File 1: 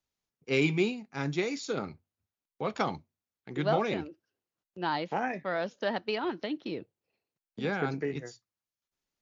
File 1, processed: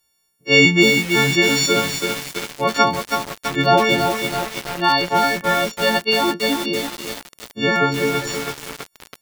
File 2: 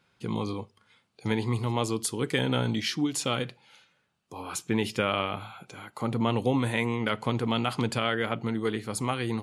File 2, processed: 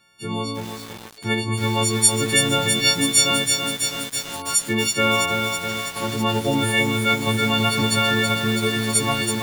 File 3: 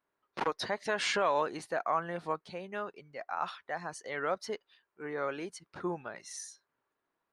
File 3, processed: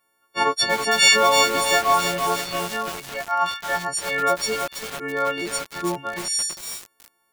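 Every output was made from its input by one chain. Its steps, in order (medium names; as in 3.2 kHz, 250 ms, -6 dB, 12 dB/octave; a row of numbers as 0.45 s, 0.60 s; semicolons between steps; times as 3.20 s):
partials quantised in pitch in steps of 4 st; bit-crushed delay 327 ms, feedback 80%, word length 6-bit, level -4.5 dB; peak normalisation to -1.5 dBFS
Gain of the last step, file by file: +11.0 dB, +3.5 dB, +9.0 dB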